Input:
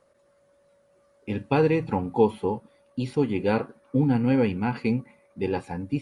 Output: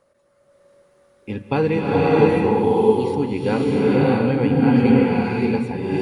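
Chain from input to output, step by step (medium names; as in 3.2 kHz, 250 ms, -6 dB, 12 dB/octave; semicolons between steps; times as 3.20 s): swelling reverb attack 620 ms, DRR -5.5 dB; trim +1 dB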